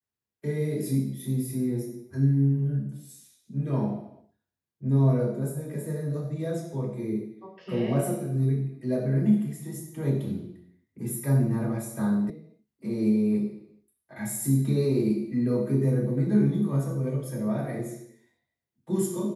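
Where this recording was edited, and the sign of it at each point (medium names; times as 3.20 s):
12.30 s: sound stops dead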